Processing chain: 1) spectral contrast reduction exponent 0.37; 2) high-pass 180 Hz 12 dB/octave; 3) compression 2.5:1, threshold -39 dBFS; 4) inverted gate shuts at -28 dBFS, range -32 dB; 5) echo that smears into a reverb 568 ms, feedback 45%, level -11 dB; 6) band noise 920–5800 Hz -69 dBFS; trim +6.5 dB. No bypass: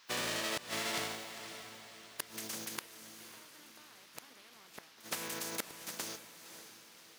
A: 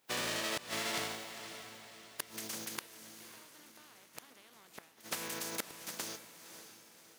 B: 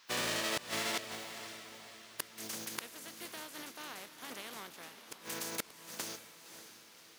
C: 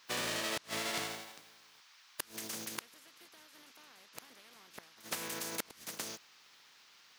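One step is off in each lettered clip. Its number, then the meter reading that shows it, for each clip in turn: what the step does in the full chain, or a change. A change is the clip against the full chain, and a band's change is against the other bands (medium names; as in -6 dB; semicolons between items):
6, momentary loudness spread change +1 LU; 3, mean gain reduction 6.0 dB; 5, momentary loudness spread change +3 LU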